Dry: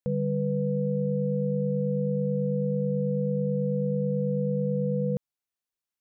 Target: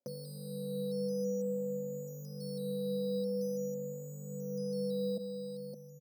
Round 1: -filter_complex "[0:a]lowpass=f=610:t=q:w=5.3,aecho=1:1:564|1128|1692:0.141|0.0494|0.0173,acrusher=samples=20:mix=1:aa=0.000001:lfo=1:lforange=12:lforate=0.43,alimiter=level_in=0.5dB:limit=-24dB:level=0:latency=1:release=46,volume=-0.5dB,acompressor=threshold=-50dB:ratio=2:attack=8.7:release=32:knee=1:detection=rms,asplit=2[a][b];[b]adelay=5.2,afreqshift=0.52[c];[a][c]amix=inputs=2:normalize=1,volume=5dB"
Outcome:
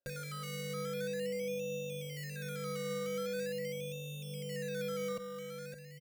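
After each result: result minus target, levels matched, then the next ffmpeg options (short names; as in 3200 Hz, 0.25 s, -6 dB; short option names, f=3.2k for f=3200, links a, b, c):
decimation with a swept rate: distortion +10 dB; 250 Hz band -4.5 dB
-filter_complex "[0:a]lowpass=f=610:t=q:w=5.3,aecho=1:1:564|1128|1692:0.141|0.0494|0.0173,acrusher=samples=8:mix=1:aa=0.000001:lfo=1:lforange=4.8:lforate=0.43,alimiter=level_in=0.5dB:limit=-24dB:level=0:latency=1:release=46,volume=-0.5dB,acompressor=threshold=-50dB:ratio=2:attack=8.7:release=32:knee=1:detection=rms,asplit=2[a][b];[b]adelay=5.2,afreqshift=0.52[c];[a][c]amix=inputs=2:normalize=1,volume=5dB"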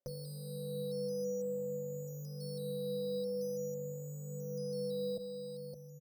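250 Hz band -4.0 dB
-filter_complex "[0:a]lowpass=f=610:t=q:w=5.3,aecho=1:1:564|1128|1692:0.141|0.0494|0.0173,acrusher=samples=8:mix=1:aa=0.000001:lfo=1:lforange=4.8:lforate=0.43,alimiter=level_in=0.5dB:limit=-24dB:level=0:latency=1:release=46,volume=-0.5dB,acompressor=threshold=-50dB:ratio=2:attack=8.7:release=32:knee=1:detection=rms,highpass=f=210:t=q:w=2.5,asplit=2[a][b];[b]adelay=5.2,afreqshift=0.52[c];[a][c]amix=inputs=2:normalize=1,volume=5dB"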